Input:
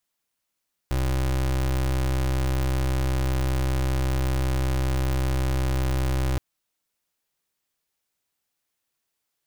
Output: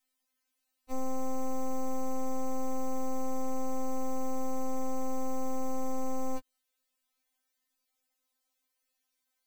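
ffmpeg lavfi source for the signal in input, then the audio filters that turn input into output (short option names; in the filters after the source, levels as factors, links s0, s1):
-f lavfi -i "aevalsrc='0.0668*(2*lt(mod(65.2*t,1),0.29)-1)':d=5.47:s=44100"
-af "alimiter=level_in=1.78:limit=0.0631:level=0:latency=1,volume=0.562,afftfilt=real='re*3.46*eq(mod(b,12),0)':imag='im*3.46*eq(mod(b,12),0)':win_size=2048:overlap=0.75"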